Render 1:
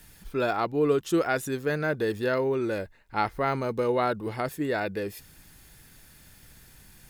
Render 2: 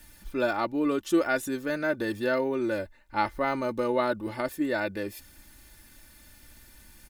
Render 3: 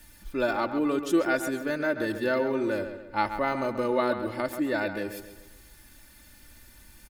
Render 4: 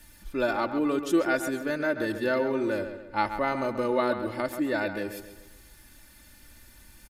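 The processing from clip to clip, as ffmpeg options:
-af "aecho=1:1:3.4:0.67,volume=-2dB"
-filter_complex "[0:a]asplit=2[a][b];[b]adelay=134,lowpass=f=4.1k:p=1,volume=-9dB,asplit=2[c][d];[d]adelay=134,lowpass=f=4.1k:p=1,volume=0.44,asplit=2[e][f];[f]adelay=134,lowpass=f=4.1k:p=1,volume=0.44,asplit=2[g][h];[h]adelay=134,lowpass=f=4.1k:p=1,volume=0.44,asplit=2[i][j];[j]adelay=134,lowpass=f=4.1k:p=1,volume=0.44[k];[a][c][e][g][i][k]amix=inputs=6:normalize=0"
-af "aresample=32000,aresample=44100"

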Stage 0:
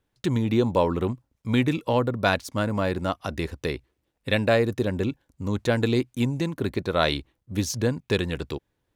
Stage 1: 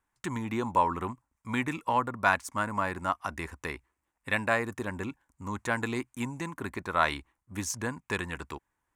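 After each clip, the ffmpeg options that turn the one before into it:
-af "equalizer=f=125:t=o:w=1:g=-6,equalizer=f=500:t=o:w=1:g=-8,equalizer=f=1k:t=o:w=1:g=12,equalizer=f=2k:t=o:w=1:g=6,equalizer=f=4k:t=o:w=1:g=-9,equalizer=f=8k:t=o:w=1:g=10,volume=-7dB"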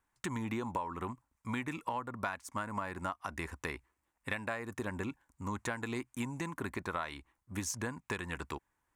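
-af "acompressor=threshold=-33dB:ratio=12"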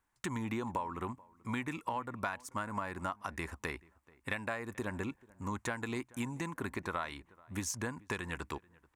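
-filter_complex "[0:a]asplit=2[a][b];[b]adelay=434,lowpass=f=1.7k:p=1,volume=-23dB,asplit=2[c][d];[d]adelay=434,lowpass=f=1.7k:p=1,volume=0.22[e];[a][c][e]amix=inputs=3:normalize=0"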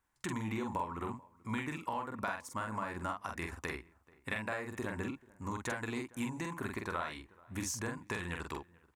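-filter_complex "[0:a]asplit=2[a][b];[b]adelay=46,volume=-4dB[c];[a][c]amix=inputs=2:normalize=0,volume=-1.5dB"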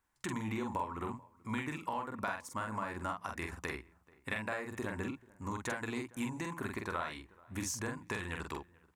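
-af "bandreject=f=58.18:t=h:w=4,bandreject=f=116.36:t=h:w=4,bandreject=f=174.54:t=h:w=4"

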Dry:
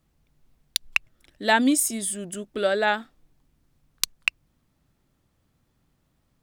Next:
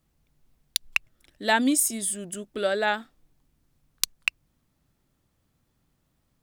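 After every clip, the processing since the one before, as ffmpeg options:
-af "highshelf=f=5.9k:g=4,volume=-2.5dB"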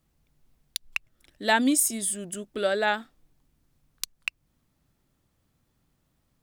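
-af "alimiter=limit=-9dB:level=0:latency=1:release=262"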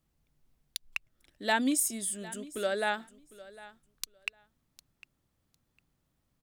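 -af "aecho=1:1:754|1508:0.112|0.0191,volume=-5.5dB"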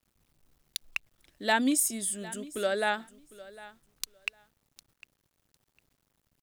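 -af "acrusher=bits=11:mix=0:aa=0.000001,volume=2dB"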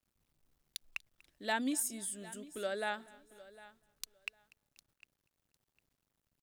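-af "aecho=1:1:242|484|726:0.0631|0.0297|0.0139,volume=-8.5dB"

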